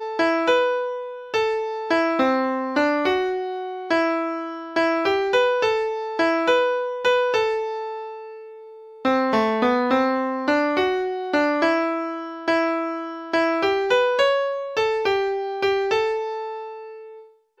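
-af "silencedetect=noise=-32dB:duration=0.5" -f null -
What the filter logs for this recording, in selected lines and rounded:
silence_start: 8.33
silence_end: 9.05 | silence_duration: 0.72
silence_start: 16.90
silence_end: 17.60 | silence_duration: 0.70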